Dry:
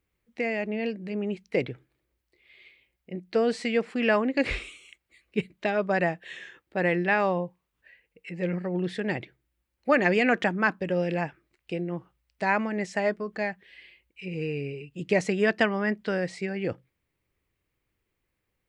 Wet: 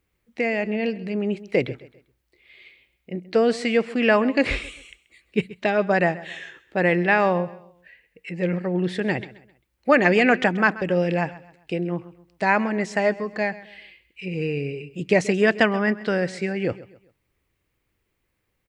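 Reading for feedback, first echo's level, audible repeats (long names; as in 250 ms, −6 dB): 36%, −18.0 dB, 2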